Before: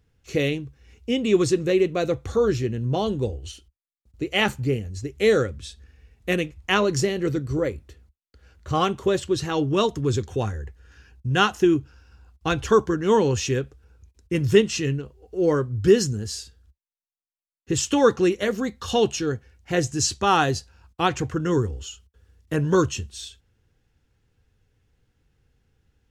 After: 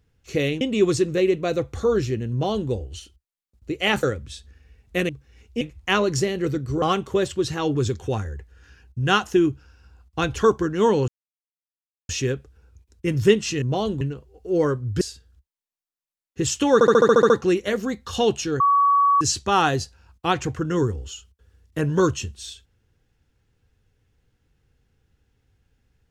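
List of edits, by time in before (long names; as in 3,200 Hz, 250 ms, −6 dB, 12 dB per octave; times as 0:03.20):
0:00.61–0:01.13: move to 0:06.42
0:02.83–0:03.22: duplicate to 0:14.89
0:04.55–0:05.36: remove
0:07.63–0:08.74: remove
0:09.67–0:10.03: remove
0:13.36: splice in silence 1.01 s
0:15.89–0:16.32: remove
0:18.05: stutter 0.07 s, 9 plays
0:19.35–0:19.96: beep over 1,130 Hz −14 dBFS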